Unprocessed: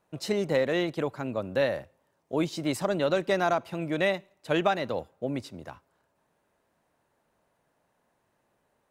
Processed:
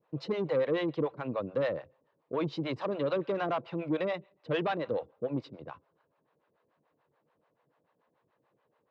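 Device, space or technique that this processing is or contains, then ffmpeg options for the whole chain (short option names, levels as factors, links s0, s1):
guitar amplifier with harmonic tremolo: -filter_complex "[0:a]acrossover=split=520[s0][s1];[s0]aeval=exprs='val(0)*(1-1/2+1/2*cos(2*PI*6.9*n/s))':c=same[s2];[s1]aeval=exprs='val(0)*(1-1/2-1/2*cos(2*PI*6.9*n/s))':c=same[s3];[s2][s3]amix=inputs=2:normalize=0,asoftclip=type=tanh:threshold=0.0422,highpass=91,equalizer=f=140:t=q:w=4:g=6,equalizer=f=310:t=q:w=4:g=5,equalizer=f=480:t=q:w=4:g=9,equalizer=f=1100:t=q:w=4:g=6,lowpass=f=4000:w=0.5412,lowpass=f=4000:w=1.3066"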